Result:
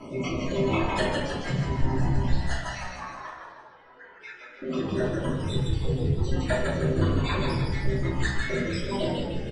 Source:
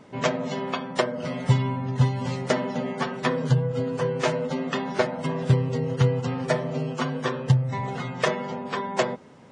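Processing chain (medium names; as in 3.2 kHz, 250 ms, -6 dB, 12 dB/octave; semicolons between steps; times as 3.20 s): random holes in the spectrogram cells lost 67%; compression 6:1, threshold -39 dBFS, peak gain reduction 23 dB; 2.78–4.62 s: ladder band-pass 1.4 kHz, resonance 40%; rotary cabinet horn 0.9 Hz; frequency-shifting echo 156 ms, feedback 55%, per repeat -63 Hz, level -4 dB; simulated room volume 140 m³, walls mixed, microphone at 2.9 m; trim +5 dB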